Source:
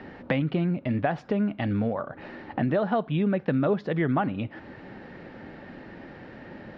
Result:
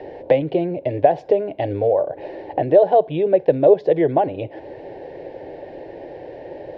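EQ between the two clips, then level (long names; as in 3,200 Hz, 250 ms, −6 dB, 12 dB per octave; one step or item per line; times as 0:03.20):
parametric band 510 Hz +13.5 dB 2.5 octaves
phaser with its sweep stopped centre 530 Hz, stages 4
+1.5 dB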